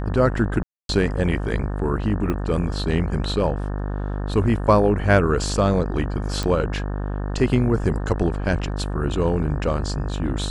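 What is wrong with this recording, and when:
mains buzz 50 Hz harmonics 36 −26 dBFS
0:00.63–0:00.89: drop-out 262 ms
0:02.30: click −13 dBFS
0:06.43: click −12 dBFS

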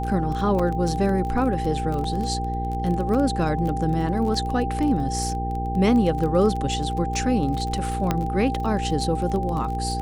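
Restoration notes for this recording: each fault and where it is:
surface crackle 21 per second −27 dBFS
mains hum 60 Hz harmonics 8 −28 dBFS
whistle 790 Hz −28 dBFS
0:00.59: drop-out 4.7 ms
0:02.04: drop-out 2.8 ms
0:08.11: click −8 dBFS

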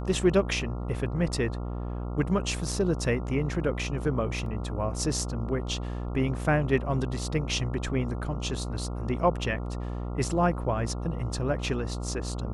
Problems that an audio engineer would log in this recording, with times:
mains buzz 60 Hz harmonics 23 −33 dBFS
0:04.46: drop-out 2.7 ms

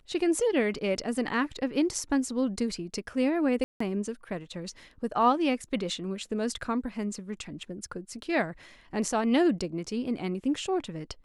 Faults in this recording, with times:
0:03.64–0:03.80: drop-out 164 ms

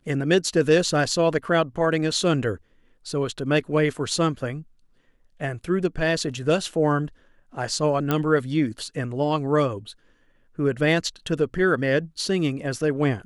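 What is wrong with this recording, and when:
0:08.11: click −9 dBFS

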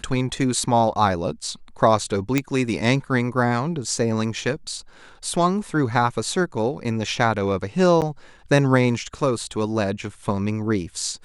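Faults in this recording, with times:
0:02.38: click −6 dBFS
0:08.01–0:08.02: drop-out 8.4 ms

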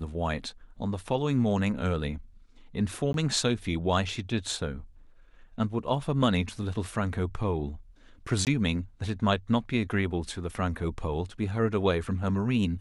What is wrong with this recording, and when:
0:03.13–0:03.14: drop-out 12 ms
0:08.45–0:08.47: drop-out 18 ms

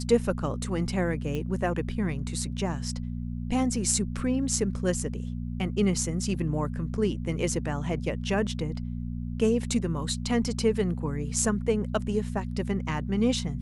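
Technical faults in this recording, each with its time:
mains hum 60 Hz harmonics 4 −33 dBFS
0:01.35: click −20 dBFS

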